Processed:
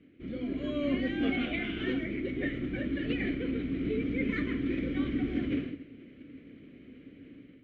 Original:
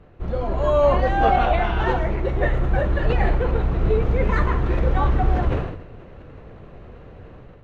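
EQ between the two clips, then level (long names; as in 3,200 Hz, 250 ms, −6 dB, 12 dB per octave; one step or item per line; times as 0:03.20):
formant filter i
+7.0 dB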